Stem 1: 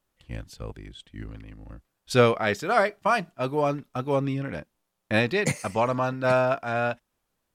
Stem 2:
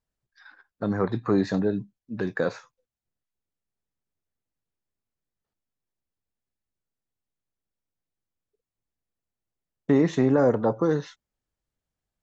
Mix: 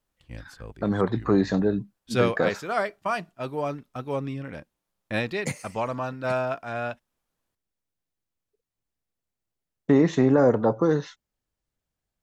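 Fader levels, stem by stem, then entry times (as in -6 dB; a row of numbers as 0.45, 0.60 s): -4.5, +1.5 dB; 0.00, 0.00 s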